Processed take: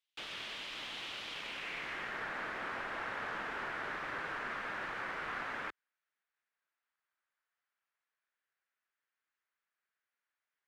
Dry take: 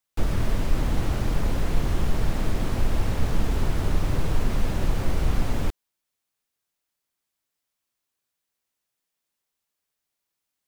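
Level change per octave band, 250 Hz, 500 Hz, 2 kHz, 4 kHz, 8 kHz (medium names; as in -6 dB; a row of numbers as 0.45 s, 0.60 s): -22.0 dB, -13.5 dB, +1.0 dB, -3.5 dB, -16.5 dB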